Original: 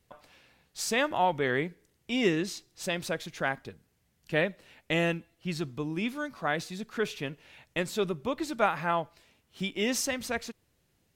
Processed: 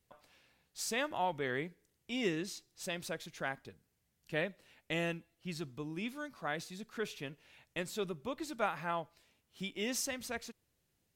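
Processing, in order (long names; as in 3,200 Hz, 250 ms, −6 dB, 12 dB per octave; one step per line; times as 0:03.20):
high-shelf EQ 4,900 Hz +4.5 dB
level −8.5 dB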